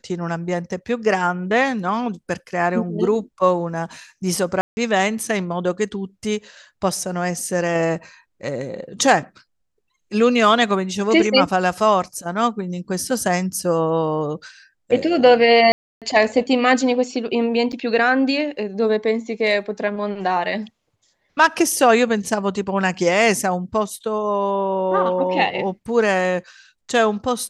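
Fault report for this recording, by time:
0:04.61–0:04.77: drop-out 160 ms
0:15.72–0:16.02: drop-out 297 ms
0:17.72–0:17.73: drop-out 7.7 ms

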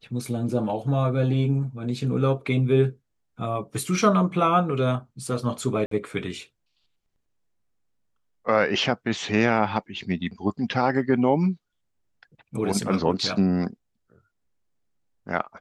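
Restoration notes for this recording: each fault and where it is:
0:05.86–0:05.91: drop-out 53 ms

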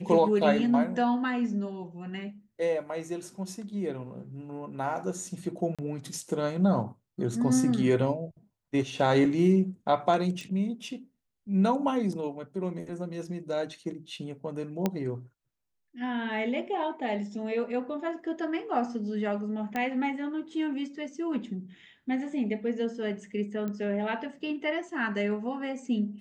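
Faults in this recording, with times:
0:05.75–0:05.79: drop-out 36 ms
0:10.41: click
0:14.86: click −13 dBFS
0:19.76: click −18 dBFS
0:23.68: click −23 dBFS

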